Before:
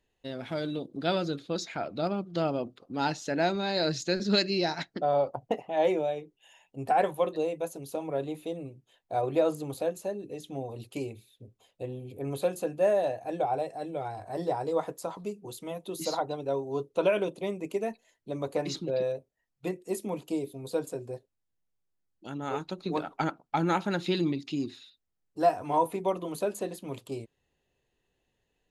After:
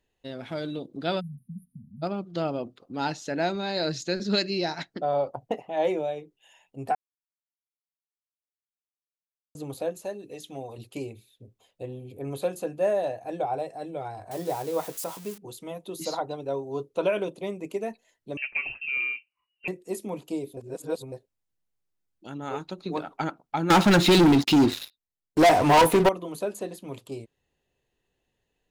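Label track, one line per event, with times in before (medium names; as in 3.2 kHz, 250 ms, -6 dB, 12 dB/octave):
1.200000	2.030000	spectral selection erased 250–9200 Hz
6.950000	9.550000	mute
10.050000	10.780000	tilt shelf lows -4.5 dB, about 650 Hz
14.310000	15.380000	zero-crossing glitches of -30.5 dBFS
18.370000	19.680000	frequency inversion carrier 2.9 kHz
20.570000	21.120000	reverse
23.700000	26.090000	waveshaping leveller passes 5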